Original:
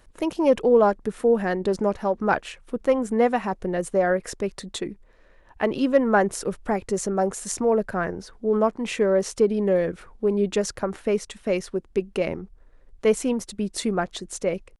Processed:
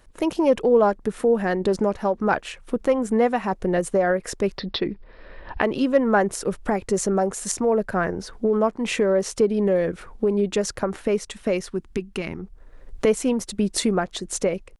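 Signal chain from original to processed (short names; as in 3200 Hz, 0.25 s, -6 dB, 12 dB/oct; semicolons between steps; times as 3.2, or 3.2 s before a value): recorder AGC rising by 17 dB/s; 4.58–5.62 steep low-pass 5300 Hz 96 dB/oct; 11.69–12.39 bell 550 Hz -14 dB 0.76 oct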